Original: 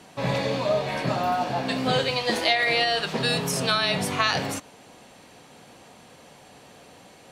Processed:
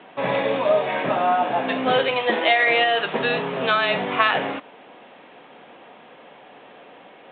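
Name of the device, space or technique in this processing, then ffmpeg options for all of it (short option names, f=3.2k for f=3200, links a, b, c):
telephone: -af "highpass=290,lowpass=3.2k,volume=5.5dB" -ar 8000 -c:a pcm_mulaw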